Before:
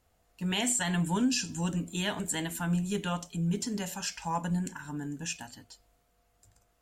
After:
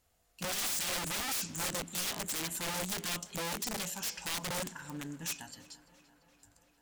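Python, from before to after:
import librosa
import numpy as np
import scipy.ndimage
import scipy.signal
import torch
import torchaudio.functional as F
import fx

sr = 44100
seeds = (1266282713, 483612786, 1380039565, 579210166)

p1 = (np.mod(10.0 ** (28.5 / 20.0) * x + 1.0, 2.0) - 1.0) / 10.0 ** (28.5 / 20.0)
p2 = fx.high_shelf(p1, sr, hz=2500.0, db=8.0)
p3 = p2 + fx.echo_tape(p2, sr, ms=343, feedback_pct=74, wet_db=-17.5, lp_hz=5500.0, drive_db=27.0, wow_cents=38, dry=0)
p4 = fx.doppler_dist(p3, sr, depth_ms=0.17)
y = p4 * librosa.db_to_amplitude(-5.5)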